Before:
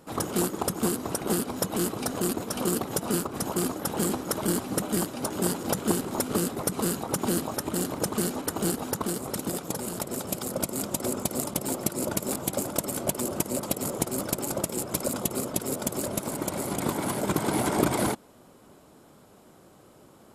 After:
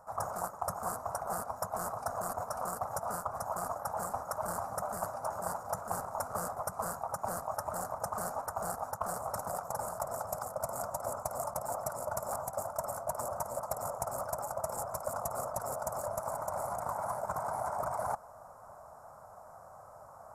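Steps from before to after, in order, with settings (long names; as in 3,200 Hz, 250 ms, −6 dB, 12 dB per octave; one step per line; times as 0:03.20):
drawn EQ curve 100 Hz 0 dB, 340 Hz −23 dB, 650 Hz +10 dB, 1,300 Hz +7 dB, 3,200 Hz −30 dB, 5,600 Hz −5 dB
reversed playback
downward compressor 6 to 1, threshold −33 dBFS, peak gain reduction 15 dB
reversed playback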